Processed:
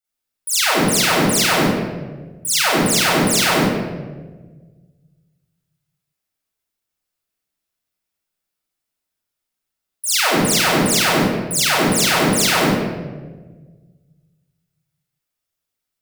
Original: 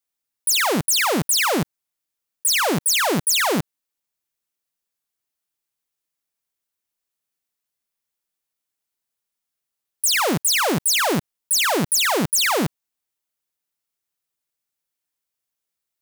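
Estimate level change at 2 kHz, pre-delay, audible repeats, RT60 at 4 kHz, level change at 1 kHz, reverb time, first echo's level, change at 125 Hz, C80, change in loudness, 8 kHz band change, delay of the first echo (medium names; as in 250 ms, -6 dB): +4.0 dB, 34 ms, no echo, 0.80 s, +3.5 dB, 1.4 s, no echo, +6.0 dB, 1.0 dB, +3.0 dB, +1.5 dB, no echo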